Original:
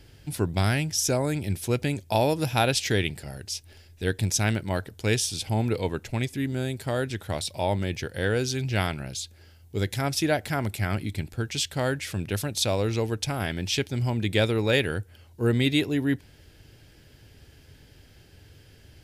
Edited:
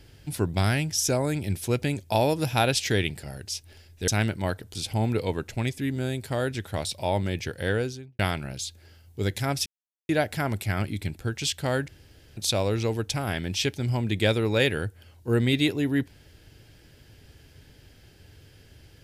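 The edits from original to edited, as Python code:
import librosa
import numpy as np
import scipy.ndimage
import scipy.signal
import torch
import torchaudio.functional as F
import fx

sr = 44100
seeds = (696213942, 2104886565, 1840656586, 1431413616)

y = fx.studio_fade_out(x, sr, start_s=8.23, length_s=0.52)
y = fx.edit(y, sr, fx.cut(start_s=4.08, length_s=0.27),
    fx.cut(start_s=5.02, length_s=0.29),
    fx.insert_silence(at_s=10.22, length_s=0.43),
    fx.room_tone_fill(start_s=12.01, length_s=0.49), tone=tone)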